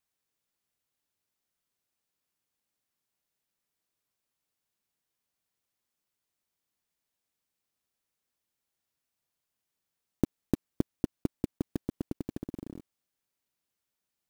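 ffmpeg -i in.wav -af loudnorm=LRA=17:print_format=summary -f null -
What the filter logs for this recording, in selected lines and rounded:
Input Integrated:    -37.5 LUFS
Input True Peak:      -9.1 dBTP
Input LRA:             5.1 LU
Input Threshold:     -47.9 LUFS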